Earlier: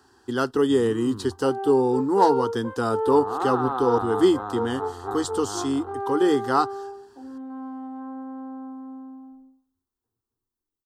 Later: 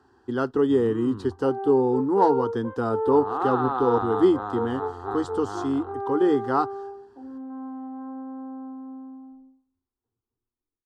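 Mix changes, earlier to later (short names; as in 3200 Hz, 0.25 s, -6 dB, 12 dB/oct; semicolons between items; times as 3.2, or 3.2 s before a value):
first sound: remove LPF 1000 Hz 6 dB/oct; master: add LPF 1200 Hz 6 dB/oct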